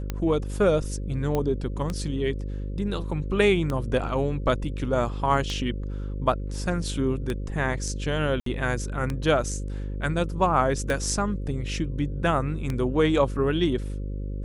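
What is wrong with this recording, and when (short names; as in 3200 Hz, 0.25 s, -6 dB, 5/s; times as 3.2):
buzz 50 Hz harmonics 11 -31 dBFS
tick 33 1/3 rpm -15 dBFS
1.35 pop -14 dBFS
8.4–8.46 gap 63 ms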